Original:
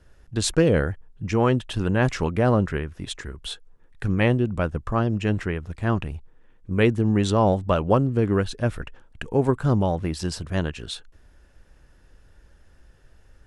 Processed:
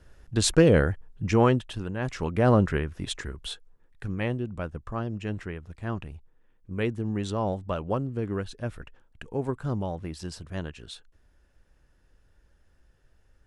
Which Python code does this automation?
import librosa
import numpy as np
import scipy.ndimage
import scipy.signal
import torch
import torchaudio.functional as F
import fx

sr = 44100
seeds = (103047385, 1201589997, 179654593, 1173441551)

y = fx.gain(x, sr, db=fx.line((1.42, 0.5), (1.94, -11.5), (2.51, 0.0), (3.21, 0.0), (4.13, -9.0)))